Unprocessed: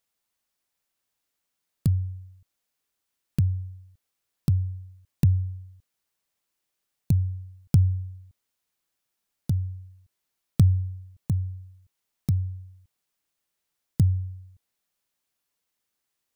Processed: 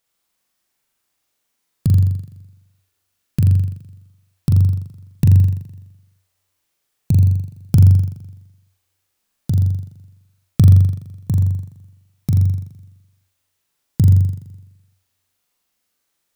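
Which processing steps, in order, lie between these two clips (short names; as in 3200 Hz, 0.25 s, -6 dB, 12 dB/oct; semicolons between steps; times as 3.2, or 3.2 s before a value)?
flutter echo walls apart 7.2 m, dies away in 0.95 s; gain +5 dB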